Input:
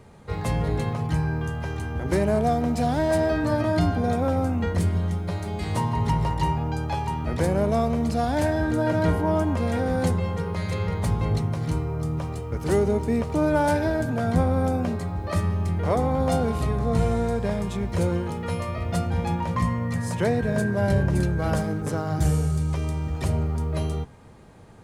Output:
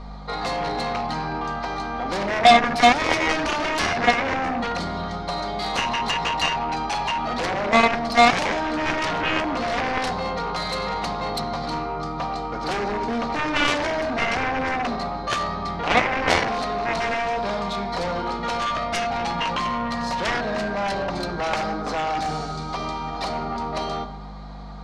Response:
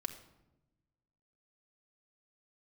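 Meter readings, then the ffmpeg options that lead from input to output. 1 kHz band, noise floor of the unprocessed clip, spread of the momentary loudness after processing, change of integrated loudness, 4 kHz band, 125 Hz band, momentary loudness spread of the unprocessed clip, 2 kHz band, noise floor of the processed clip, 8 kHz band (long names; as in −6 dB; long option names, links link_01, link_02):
+8.0 dB, −33 dBFS, 10 LU, +1.5 dB, +14.0 dB, −12.0 dB, 6 LU, +10.5 dB, −31 dBFS, +3.5 dB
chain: -filter_complex "[0:a]asplit=2[link_01][link_02];[link_02]alimiter=limit=-19.5dB:level=0:latency=1:release=14,volume=-1.5dB[link_03];[link_01][link_03]amix=inputs=2:normalize=0,highpass=430,equalizer=frequency=450:width_type=q:width=4:gain=-9,equalizer=frequency=750:width_type=q:width=4:gain=7,equalizer=frequency=1200:width_type=q:width=4:gain=5,equalizer=frequency=1700:width_type=q:width=4:gain=-5,equalizer=frequency=2700:width_type=q:width=4:gain=-8,equalizer=frequency=4200:width_type=q:width=4:gain=9,lowpass=frequency=5200:width=0.5412,lowpass=frequency=5200:width=1.3066,aeval=exprs='val(0)+0.01*(sin(2*PI*50*n/s)+sin(2*PI*2*50*n/s)/2+sin(2*PI*3*50*n/s)/3+sin(2*PI*4*50*n/s)/4+sin(2*PI*5*50*n/s)/5)':channel_layout=same[link_04];[1:a]atrim=start_sample=2205,afade=type=out:start_time=0.38:duration=0.01,atrim=end_sample=17199[link_05];[link_04][link_05]afir=irnorm=-1:irlink=0,aeval=exprs='0.422*(cos(1*acos(clip(val(0)/0.422,-1,1)))-cos(1*PI/2))+0.15*(cos(7*acos(clip(val(0)/0.422,-1,1)))-cos(7*PI/2))':channel_layout=same,volume=2dB"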